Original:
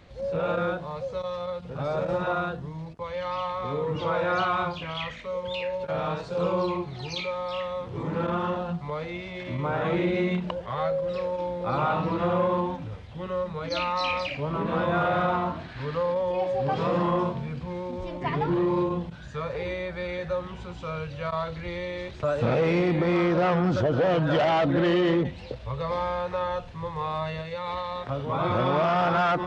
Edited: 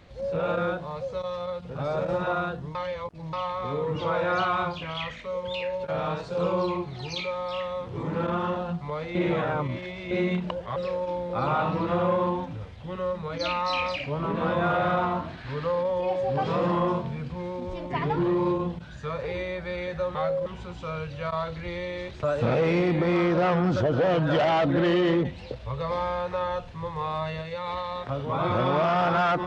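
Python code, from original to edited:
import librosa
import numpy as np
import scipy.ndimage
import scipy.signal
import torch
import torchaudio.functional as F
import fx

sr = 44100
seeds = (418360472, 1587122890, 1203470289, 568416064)

y = fx.edit(x, sr, fx.reverse_span(start_s=2.75, length_s=0.58),
    fx.reverse_span(start_s=9.15, length_s=0.96),
    fx.move(start_s=10.76, length_s=0.31, to_s=20.46), tone=tone)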